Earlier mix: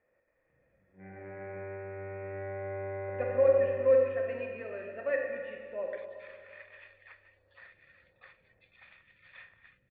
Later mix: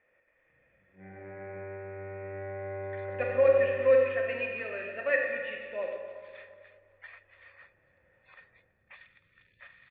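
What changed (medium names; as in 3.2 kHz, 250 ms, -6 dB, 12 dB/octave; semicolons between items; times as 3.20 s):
speech: add peaking EQ 2.9 kHz +12 dB 2.2 oct; second sound: entry -3.00 s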